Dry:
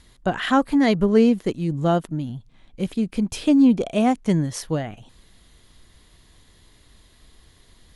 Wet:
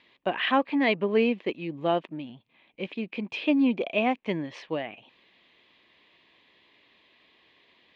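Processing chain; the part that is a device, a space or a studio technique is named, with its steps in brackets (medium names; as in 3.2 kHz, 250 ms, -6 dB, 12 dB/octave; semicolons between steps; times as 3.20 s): phone earpiece (cabinet simulation 400–3300 Hz, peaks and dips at 450 Hz -3 dB, 740 Hz -4 dB, 1.4 kHz -10 dB, 2.5 kHz +8 dB)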